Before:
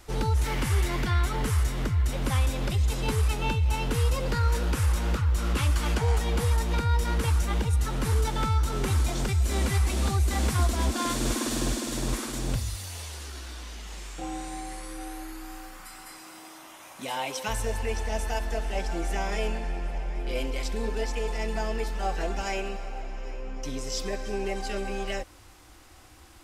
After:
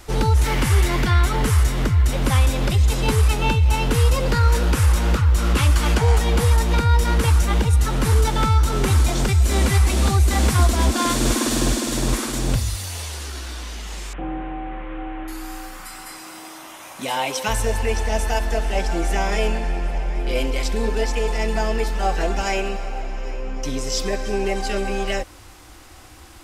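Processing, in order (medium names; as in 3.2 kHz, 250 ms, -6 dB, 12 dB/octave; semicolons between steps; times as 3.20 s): 14.13–15.28 s: one-bit delta coder 16 kbps, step -48.5 dBFS; trim +8 dB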